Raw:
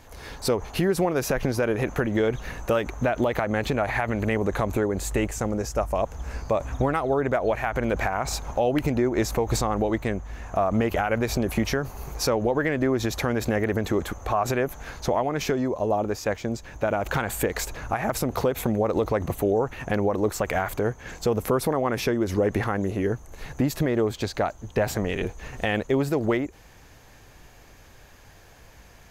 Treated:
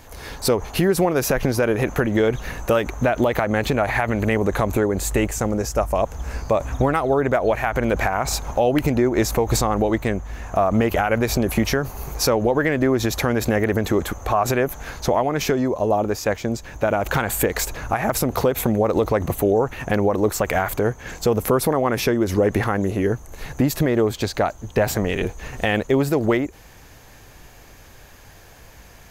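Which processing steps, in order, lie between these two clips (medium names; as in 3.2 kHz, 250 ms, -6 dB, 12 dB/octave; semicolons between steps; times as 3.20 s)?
treble shelf 11 kHz +7 dB; trim +4.5 dB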